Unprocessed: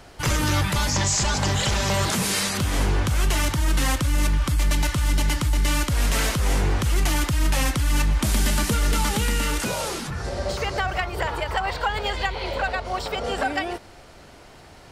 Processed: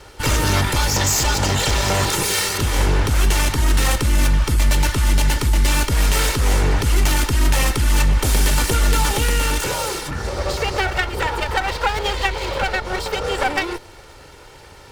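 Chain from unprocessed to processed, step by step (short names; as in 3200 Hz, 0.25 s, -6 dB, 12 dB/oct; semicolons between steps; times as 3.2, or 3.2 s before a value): minimum comb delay 2.2 ms; gain +5.5 dB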